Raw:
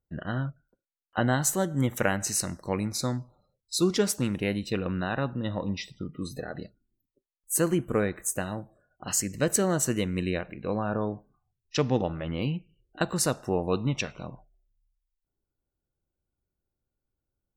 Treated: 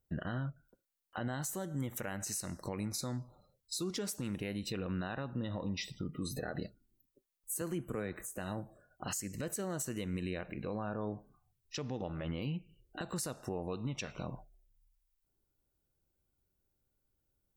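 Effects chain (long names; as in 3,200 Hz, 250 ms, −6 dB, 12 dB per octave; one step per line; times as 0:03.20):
high-shelf EQ 8,700 Hz +8 dB
downward compressor 5 to 1, threshold −35 dBFS, peak gain reduction 16.5 dB
brickwall limiter −30 dBFS, peak gain reduction 9 dB
0:07.61–0:08.38: multiband upward and downward compressor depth 40%
level +2 dB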